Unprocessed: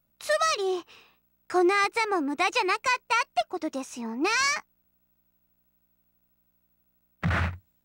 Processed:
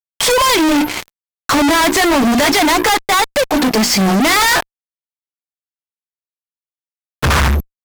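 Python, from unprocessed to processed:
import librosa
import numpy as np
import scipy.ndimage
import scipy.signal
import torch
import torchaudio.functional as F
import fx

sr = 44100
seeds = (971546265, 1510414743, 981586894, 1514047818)

y = fx.pitch_heads(x, sr, semitones=-3.5)
y = fx.hum_notches(y, sr, base_hz=60, count=6)
y = fx.fuzz(y, sr, gain_db=53.0, gate_db=-51.0)
y = F.gain(torch.from_numpy(y), 2.0).numpy()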